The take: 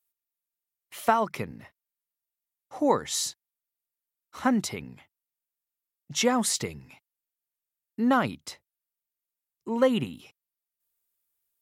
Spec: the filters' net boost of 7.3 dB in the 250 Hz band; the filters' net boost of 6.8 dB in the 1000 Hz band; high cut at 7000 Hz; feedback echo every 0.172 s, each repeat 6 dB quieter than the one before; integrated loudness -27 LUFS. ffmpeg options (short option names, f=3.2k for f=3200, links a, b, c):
-af "lowpass=7k,equalizer=f=250:t=o:g=7.5,equalizer=f=1k:t=o:g=8,aecho=1:1:172|344|516|688|860|1032:0.501|0.251|0.125|0.0626|0.0313|0.0157,volume=-5.5dB"